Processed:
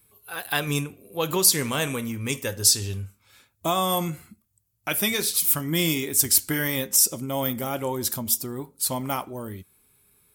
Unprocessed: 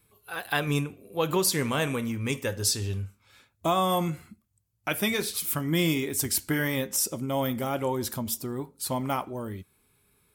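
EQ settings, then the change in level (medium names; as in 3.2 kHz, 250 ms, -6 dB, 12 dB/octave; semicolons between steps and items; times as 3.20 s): dynamic bell 5.2 kHz, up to +4 dB, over -40 dBFS, Q 0.71; treble shelf 7.6 kHz +10.5 dB; 0.0 dB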